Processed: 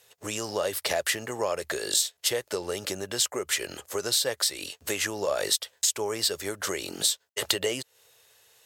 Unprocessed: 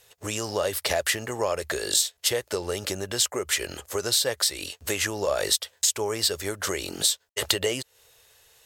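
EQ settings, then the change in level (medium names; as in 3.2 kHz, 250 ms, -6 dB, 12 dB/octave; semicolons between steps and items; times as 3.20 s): high-pass 120 Hz 12 dB/octave; -2.0 dB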